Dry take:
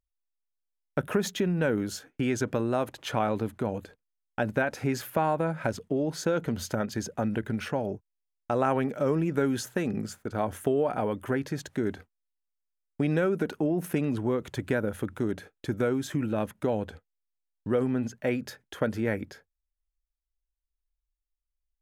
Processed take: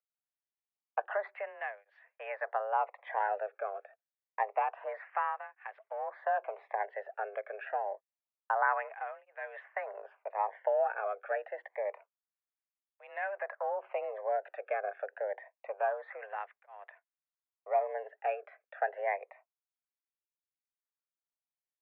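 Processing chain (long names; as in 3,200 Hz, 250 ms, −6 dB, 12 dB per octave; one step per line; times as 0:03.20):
gain on one half-wave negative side −3 dB
single-sideband voice off tune +200 Hz 360–2,100 Hz
through-zero flanger with one copy inverted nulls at 0.27 Hz, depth 1.1 ms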